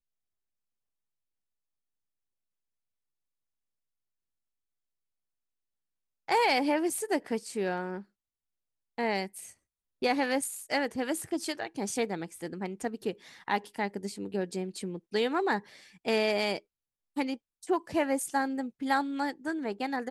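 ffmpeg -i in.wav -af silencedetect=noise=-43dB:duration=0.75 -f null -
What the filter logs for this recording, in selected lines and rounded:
silence_start: 0.00
silence_end: 6.28 | silence_duration: 6.28
silence_start: 8.02
silence_end: 8.98 | silence_duration: 0.96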